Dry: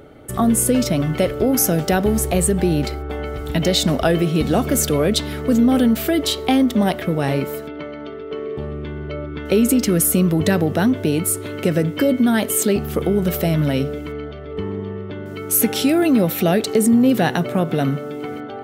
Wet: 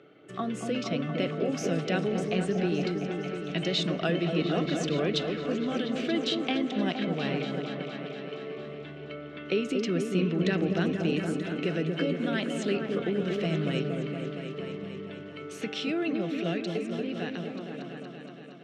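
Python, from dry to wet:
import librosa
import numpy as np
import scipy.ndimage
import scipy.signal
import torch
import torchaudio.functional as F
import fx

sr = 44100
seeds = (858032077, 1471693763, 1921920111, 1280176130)

y = fx.fade_out_tail(x, sr, length_s=3.54)
y = fx.cabinet(y, sr, low_hz=160.0, low_slope=24, high_hz=5300.0, hz=(240.0, 560.0, 880.0, 2700.0, 4800.0), db=(-9, -5, -10, 6, -4))
y = fx.echo_opening(y, sr, ms=233, hz=750, octaves=1, feedback_pct=70, wet_db=-3)
y = F.gain(torch.from_numpy(y), -9.0).numpy()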